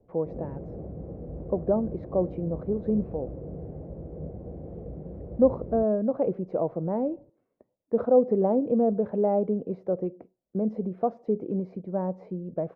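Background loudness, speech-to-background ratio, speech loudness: -40.0 LUFS, 12.5 dB, -27.5 LUFS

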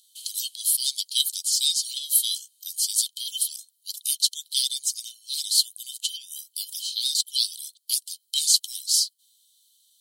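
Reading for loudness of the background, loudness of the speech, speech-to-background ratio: -48.0 LUFS, -24.0 LUFS, 24.0 dB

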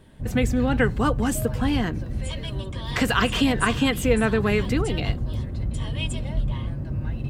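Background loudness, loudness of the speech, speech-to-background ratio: -29.5 LUFS, -24.0 LUFS, 5.5 dB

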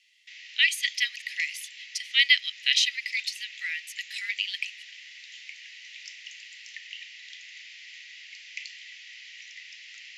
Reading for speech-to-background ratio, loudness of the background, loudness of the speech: 16.0 dB, -42.0 LUFS, -26.0 LUFS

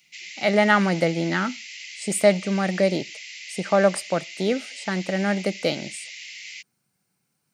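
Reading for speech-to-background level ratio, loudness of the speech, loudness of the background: 13.5 dB, -23.0 LUFS, -36.5 LUFS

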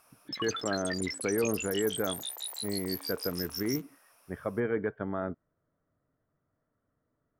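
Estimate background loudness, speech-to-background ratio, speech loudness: -36.5 LUFS, 2.5 dB, -34.0 LUFS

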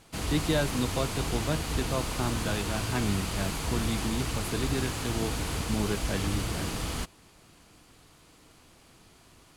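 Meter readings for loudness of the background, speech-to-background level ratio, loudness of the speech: -32.5 LUFS, -0.5 dB, -33.0 LUFS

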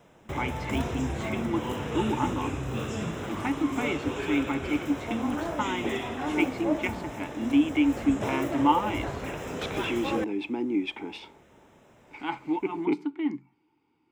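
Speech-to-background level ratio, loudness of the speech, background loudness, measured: 3.0 dB, -30.0 LUFS, -33.0 LUFS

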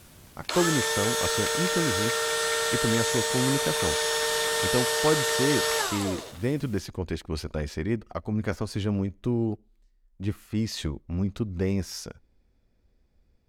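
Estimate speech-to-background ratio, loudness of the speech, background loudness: -5.0 dB, -30.5 LUFS, -25.5 LUFS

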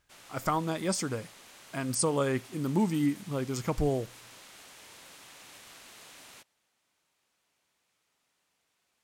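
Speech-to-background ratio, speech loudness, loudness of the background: 19.0 dB, -31.0 LUFS, -50.0 LUFS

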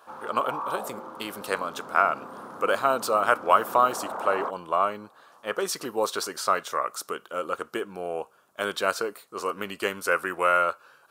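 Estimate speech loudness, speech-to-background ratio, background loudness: -27.0 LUFS, 10.5 dB, -37.5 LUFS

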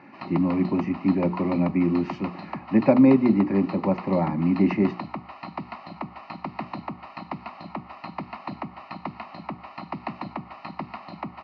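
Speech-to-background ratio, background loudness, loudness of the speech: 14.5 dB, -37.0 LUFS, -22.5 LUFS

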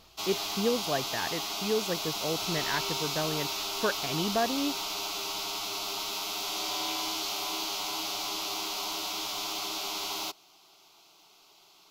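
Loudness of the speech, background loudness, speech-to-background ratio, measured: -33.0 LUFS, -32.0 LUFS, -1.0 dB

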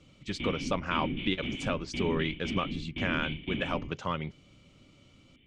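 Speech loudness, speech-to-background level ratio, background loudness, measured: -34.0 LUFS, 2.5 dB, -36.5 LUFS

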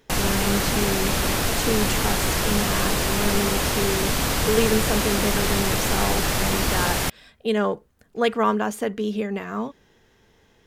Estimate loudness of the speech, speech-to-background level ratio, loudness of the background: -27.0 LUFS, -4.5 dB, -22.5 LUFS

